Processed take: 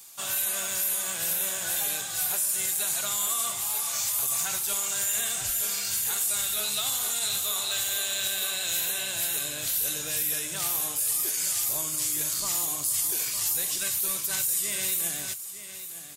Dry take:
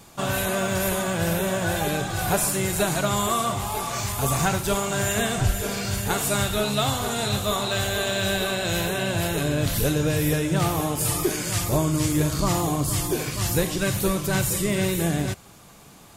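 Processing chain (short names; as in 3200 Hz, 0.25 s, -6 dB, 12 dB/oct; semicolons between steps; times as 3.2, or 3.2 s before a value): pre-emphasis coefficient 0.97; limiter -22.5 dBFS, peak gain reduction 10 dB; on a send: echo 0.909 s -12 dB; on the sum: gain +5 dB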